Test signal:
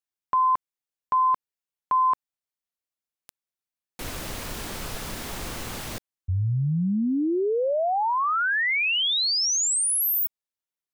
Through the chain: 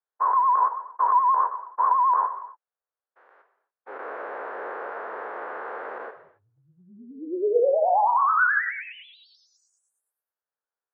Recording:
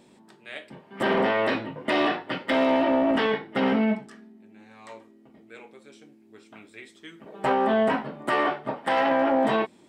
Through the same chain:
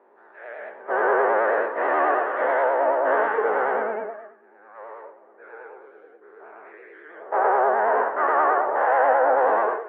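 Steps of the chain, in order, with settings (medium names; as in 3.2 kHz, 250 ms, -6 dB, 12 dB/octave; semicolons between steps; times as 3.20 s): every event in the spectrogram widened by 240 ms; gated-style reverb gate 310 ms falling, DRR 6 dB; vibrato 9.3 Hz 97 cents; Chebyshev band-pass 420–1600 Hz, order 3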